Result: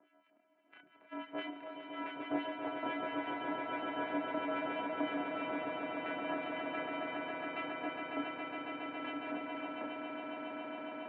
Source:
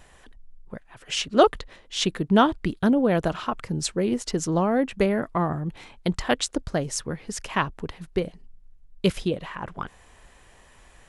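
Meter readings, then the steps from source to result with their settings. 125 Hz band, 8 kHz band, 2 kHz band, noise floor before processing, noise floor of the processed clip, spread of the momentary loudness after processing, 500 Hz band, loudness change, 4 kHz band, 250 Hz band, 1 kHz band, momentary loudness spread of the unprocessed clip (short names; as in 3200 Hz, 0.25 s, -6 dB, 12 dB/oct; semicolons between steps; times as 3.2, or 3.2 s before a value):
-30.0 dB, under -40 dB, -7.5 dB, -54 dBFS, -70 dBFS, 6 LU, -14.5 dB, -14.5 dB, -16.5 dB, -14.5 dB, -11.0 dB, 16 LU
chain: sample sorter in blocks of 128 samples; compressor, threshold -22 dBFS, peak gain reduction 11 dB; resonator 780 Hz, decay 0.37 s, mix 90%; on a send: split-band echo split 390 Hz, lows 97 ms, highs 0.282 s, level -13 dB; on the sum: harmonic tremolo 6 Hz, depth 100%, crossover 1500 Hz; chorus voices 6, 0.22 Hz, delay 28 ms, depth 2.7 ms; swelling echo 0.138 s, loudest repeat 8, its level -7 dB; mistuned SSB -55 Hz 350–2500 Hz; gain +15 dB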